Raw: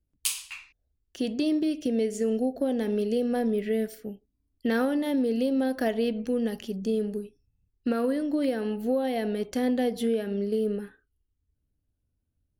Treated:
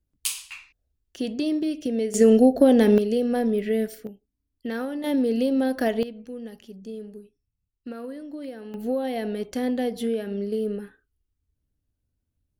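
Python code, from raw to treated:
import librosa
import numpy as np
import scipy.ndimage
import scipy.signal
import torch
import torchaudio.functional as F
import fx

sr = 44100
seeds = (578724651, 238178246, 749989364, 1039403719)

y = fx.gain(x, sr, db=fx.steps((0.0, 0.5), (2.14, 11.0), (2.98, 3.0), (4.07, -4.5), (5.04, 3.0), (6.03, -9.5), (8.74, 0.0)))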